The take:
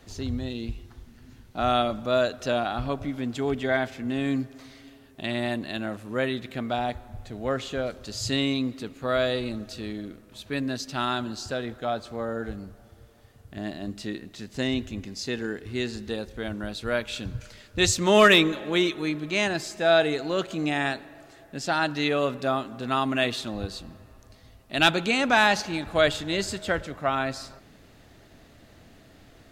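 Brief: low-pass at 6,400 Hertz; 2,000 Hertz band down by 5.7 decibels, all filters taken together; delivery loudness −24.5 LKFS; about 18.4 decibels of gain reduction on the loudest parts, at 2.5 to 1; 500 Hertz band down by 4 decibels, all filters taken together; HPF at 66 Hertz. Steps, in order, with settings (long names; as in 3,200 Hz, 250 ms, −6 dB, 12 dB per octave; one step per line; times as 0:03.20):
high-pass filter 66 Hz
low-pass filter 6,400 Hz
parametric band 500 Hz −5 dB
parametric band 2,000 Hz −7.5 dB
downward compressor 2.5 to 1, threshold −45 dBFS
level +18.5 dB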